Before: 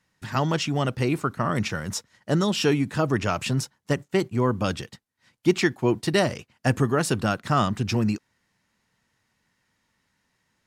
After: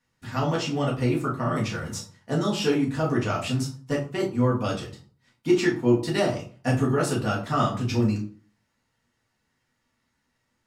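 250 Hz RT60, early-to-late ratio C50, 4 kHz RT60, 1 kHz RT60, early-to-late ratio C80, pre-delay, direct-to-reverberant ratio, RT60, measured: 0.50 s, 8.5 dB, 0.30 s, 0.45 s, 13.5 dB, 4 ms, −4.5 dB, 0.45 s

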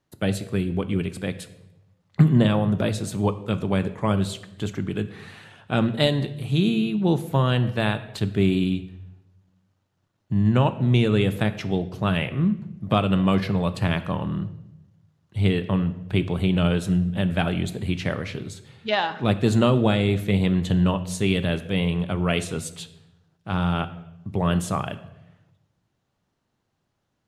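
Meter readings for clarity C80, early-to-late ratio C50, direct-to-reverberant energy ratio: 16.0 dB, 14.0 dB, 10.5 dB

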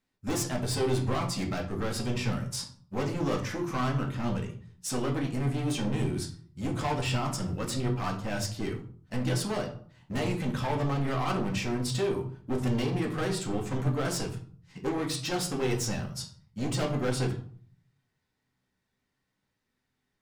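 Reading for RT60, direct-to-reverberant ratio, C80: 0.50 s, 0.0 dB, 13.5 dB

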